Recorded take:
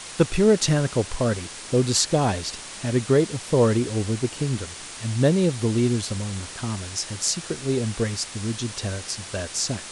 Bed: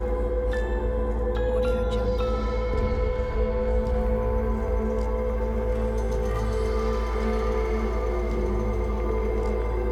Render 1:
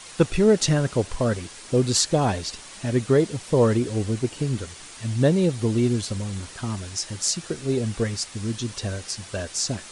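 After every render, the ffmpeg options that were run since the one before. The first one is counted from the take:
-af "afftdn=nr=6:nf=-38"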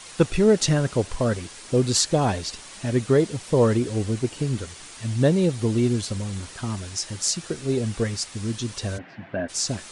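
-filter_complex "[0:a]asplit=3[a][b][c];[a]afade=t=out:st=8.97:d=0.02[d];[b]highpass=130,equalizer=f=160:t=q:w=4:g=8,equalizer=f=270:t=q:w=4:g=10,equalizer=f=450:t=q:w=4:g=-6,equalizer=f=680:t=q:w=4:g=7,equalizer=f=1.2k:t=q:w=4:g=-6,equalizer=f=1.7k:t=q:w=4:g=4,lowpass=f=2.3k:w=0.5412,lowpass=f=2.3k:w=1.3066,afade=t=in:st=8.97:d=0.02,afade=t=out:st=9.48:d=0.02[e];[c]afade=t=in:st=9.48:d=0.02[f];[d][e][f]amix=inputs=3:normalize=0"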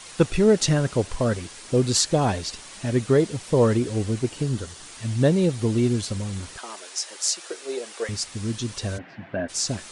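-filter_complex "[0:a]asettb=1/sr,asplit=3[a][b][c];[a]atrim=end=4.434[d];[b]atrim=start=4.43:end=4.87,asetpts=PTS-STARTPTS,afade=t=in:d=0.004:c=qsin,afade=t=out:st=0.436:d=0.004:c=qsin,equalizer=f=2.3k:t=o:w=0.3:g=-7.5[e];[c]atrim=start=4.866[f];[d][e]acrossfade=d=0.004:c1=hsin:c2=qsin[g];[g][f]acrossfade=d=0.004:c1=qsin:c2=hsin,asettb=1/sr,asplit=3[h][i][j];[h]atrim=end=6.584[k];[i]atrim=start=6.58:end=8.09,asetpts=PTS-STARTPTS,afade=t=in:d=0.004:c=qsin,afade=t=out:st=1.506:d=0.004:c=qsin,highpass=f=420:w=0.5412,highpass=f=420:w=1.3066[l];[j]atrim=start=8.086[m];[k][l]acrossfade=d=0.004:c1=hsin:c2=qsin[n];[n][m]acrossfade=d=0.004:c1=qsin:c2=hsin"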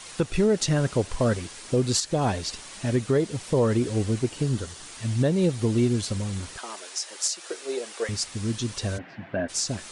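-af "alimiter=limit=-13dB:level=0:latency=1:release=219"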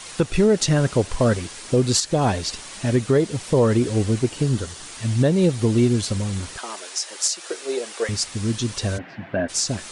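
-af "volume=4.5dB"

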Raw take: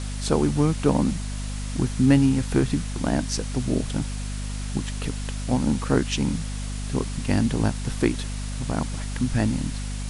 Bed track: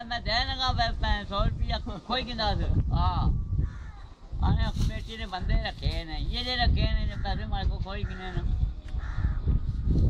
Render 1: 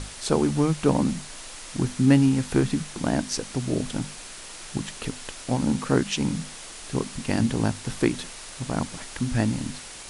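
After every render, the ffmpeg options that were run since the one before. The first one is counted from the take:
-af "bandreject=f=50:t=h:w=6,bandreject=f=100:t=h:w=6,bandreject=f=150:t=h:w=6,bandreject=f=200:t=h:w=6,bandreject=f=250:t=h:w=6"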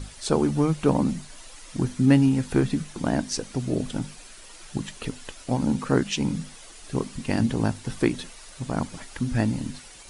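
-af "afftdn=nr=9:nf=-41"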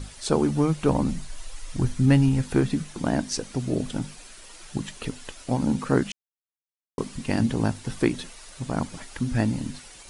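-filter_complex "[0:a]asplit=3[a][b][c];[a]afade=t=out:st=0.84:d=0.02[d];[b]asubboost=boost=7.5:cutoff=95,afade=t=in:st=0.84:d=0.02,afade=t=out:st=2.41:d=0.02[e];[c]afade=t=in:st=2.41:d=0.02[f];[d][e][f]amix=inputs=3:normalize=0,asplit=3[g][h][i];[g]atrim=end=6.12,asetpts=PTS-STARTPTS,afade=t=out:st=6.116:d=0.004:c=hsin[j];[h]atrim=start=6.12:end=6.98,asetpts=PTS-STARTPTS,volume=0[k];[i]atrim=start=6.98,asetpts=PTS-STARTPTS,afade=t=in:d=0.004:c=hsin[l];[j][k][l]concat=n=3:v=0:a=1"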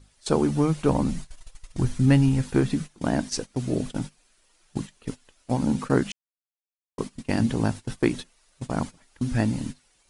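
-af "agate=range=-18dB:threshold=-31dB:ratio=16:detection=peak"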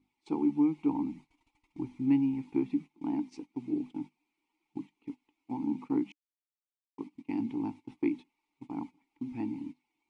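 -filter_complex "[0:a]asplit=3[a][b][c];[a]bandpass=f=300:t=q:w=8,volume=0dB[d];[b]bandpass=f=870:t=q:w=8,volume=-6dB[e];[c]bandpass=f=2.24k:t=q:w=8,volume=-9dB[f];[d][e][f]amix=inputs=3:normalize=0"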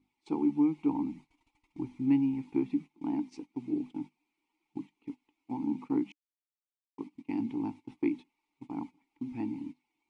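-af anull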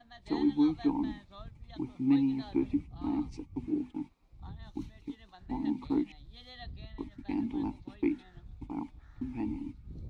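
-filter_complex "[1:a]volume=-21dB[a];[0:a][a]amix=inputs=2:normalize=0"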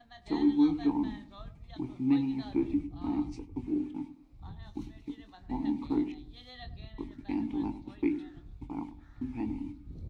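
-filter_complex "[0:a]asplit=2[a][b];[b]adelay=24,volume=-10.5dB[c];[a][c]amix=inputs=2:normalize=0,asplit=2[d][e];[e]adelay=100,lowpass=f=810:p=1,volume=-11.5dB,asplit=2[f][g];[g]adelay=100,lowpass=f=810:p=1,volume=0.38,asplit=2[h][i];[i]adelay=100,lowpass=f=810:p=1,volume=0.38,asplit=2[j][k];[k]adelay=100,lowpass=f=810:p=1,volume=0.38[l];[f][h][j][l]amix=inputs=4:normalize=0[m];[d][m]amix=inputs=2:normalize=0"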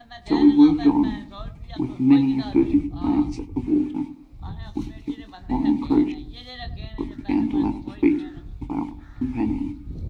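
-af "volume=11dB"

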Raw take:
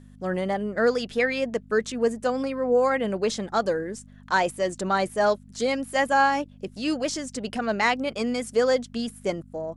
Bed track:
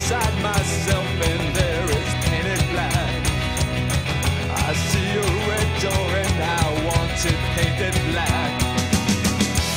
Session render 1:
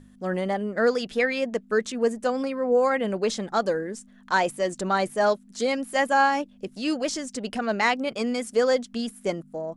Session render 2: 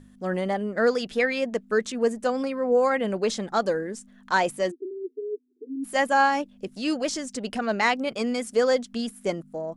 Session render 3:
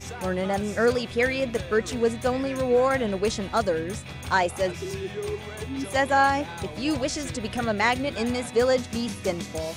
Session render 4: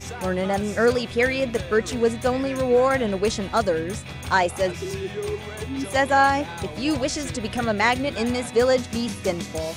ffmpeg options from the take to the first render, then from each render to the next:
-af "bandreject=f=50:t=h:w=4,bandreject=f=100:t=h:w=4,bandreject=f=150:t=h:w=4"
-filter_complex "[0:a]asplit=3[a][b][c];[a]afade=t=out:st=4.7:d=0.02[d];[b]asuperpass=centerf=340:order=20:qfactor=1.9,afade=t=in:st=4.7:d=0.02,afade=t=out:st=5.83:d=0.02[e];[c]afade=t=in:st=5.83:d=0.02[f];[d][e][f]amix=inputs=3:normalize=0"
-filter_complex "[1:a]volume=-15.5dB[a];[0:a][a]amix=inputs=2:normalize=0"
-af "volume=2.5dB"

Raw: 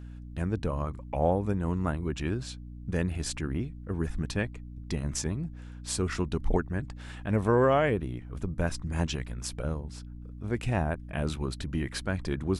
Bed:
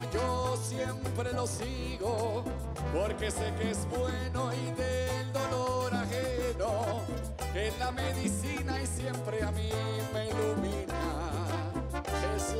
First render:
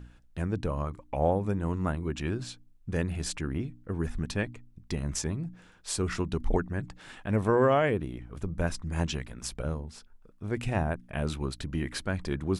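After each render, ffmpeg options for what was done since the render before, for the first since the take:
-af "bandreject=f=60:t=h:w=4,bandreject=f=120:t=h:w=4,bandreject=f=180:t=h:w=4,bandreject=f=240:t=h:w=4,bandreject=f=300:t=h:w=4"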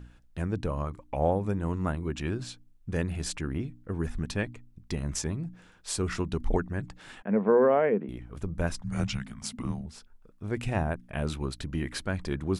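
-filter_complex "[0:a]asettb=1/sr,asplit=3[a][b][c];[a]atrim=end=7.224[d];[b]atrim=start=7.22:end=8.09,asetpts=PTS-STARTPTS,afade=t=in:d=0.004:c=qsin,afade=t=out:st=0.866:d=0.004:c=qsin,highpass=f=200:w=0.5412,highpass=f=200:w=1.3066,equalizer=f=200:t=q:w=4:g=9,equalizer=f=310:t=q:w=4:g=-5,equalizer=f=460:t=q:w=4:g=6,equalizer=f=1.2k:t=q:w=4:g=-4,equalizer=f=1.7k:t=q:w=4:g=-3,lowpass=f=2.1k:w=0.5412,lowpass=f=2.1k:w=1.3066[e];[c]atrim=start=8.086[f];[d][e]acrossfade=d=0.004:c1=hsin:c2=qsin[g];[g][f]acrossfade=d=0.004:c1=qsin:c2=hsin,asettb=1/sr,asplit=3[h][i][j];[h]atrim=end=8.814[k];[i]atrim=start=8.81:end=9.86,asetpts=PTS-STARTPTS,afade=t=in:d=0.004:c=qsin,afade=t=out:st=1.046:d=0.004:c=qsin,afreqshift=-270[l];[j]atrim=start=9.856[m];[k][l]acrossfade=d=0.004:c1=hsin:c2=qsin[n];[n][m]acrossfade=d=0.004:c1=qsin:c2=hsin"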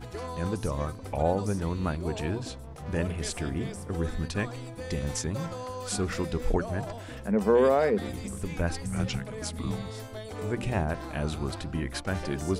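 -filter_complex "[1:a]volume=-6dB[a];[0:a][a]amix=inputs=2:normalize=0"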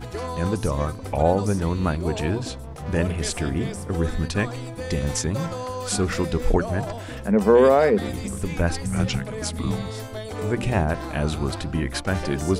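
-af "volume=6.5dB"

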